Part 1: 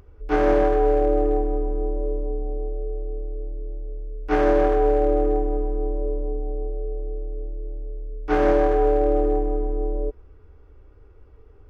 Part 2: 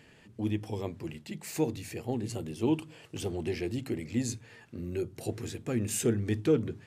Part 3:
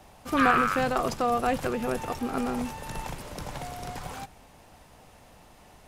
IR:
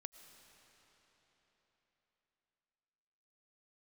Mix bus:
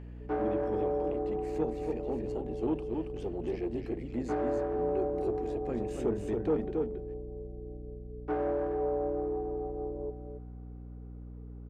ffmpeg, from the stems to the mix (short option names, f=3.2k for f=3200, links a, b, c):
-filter_complex "[0:a]acompressor=threshold=-25dB:ratio=3,volume=-5.5dB,asplit=3[a][b][c];[b]volume=-3dB[d];[c]volume=-8dB[e];[1:a]volume=0.5dB,asplit=2[f][g];[g]volume=-5dB[h];[3:a]atrim=start_sample=2205[i];[d][i]afir=irnorm=-1:irlink=0[j];[e][h]amix=inputs=2:normalize=0,aecho=0:1:276:1[k];[a][f][j][k]amix=inputs=4:normalize=0,asoftclip=type=tanh:threshold=-20.5dB,bandpass=f=500:t=q:w=0.71:csg=0,aeval=exprs='val(0)+0.00708*(sin(2*PI*60*n/s)+sin(2*PI*2*60*n/s)/2+sin(2*PI*3*60*n/s)/3+sin(2*PI*4*60*n/s)/4+sin(2*PI*5*60*n/s)/5)':c=same"